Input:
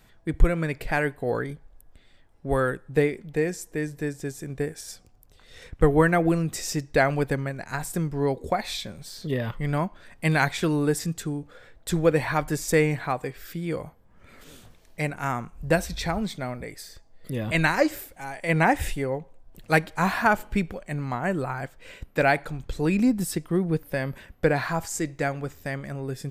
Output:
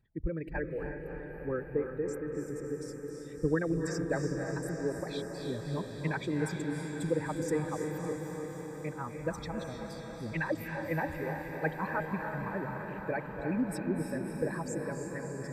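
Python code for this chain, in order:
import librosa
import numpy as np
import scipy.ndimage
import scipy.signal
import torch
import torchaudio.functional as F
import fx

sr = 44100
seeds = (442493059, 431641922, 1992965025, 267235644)

y = fx.envelope_sharpen(x, sr, power=2.0)
y = fx.echo_diffused(y, sr, ms=544, feedback_pct=75, wet_db=-5.0)
y = fx.stretch_vocoder(y, sr, factor=0.59)
y = fx.notch_comb(y, sr, f0_hz=710.0)
y = F.gain(torch.from_numpy(y), -9.0).numpy()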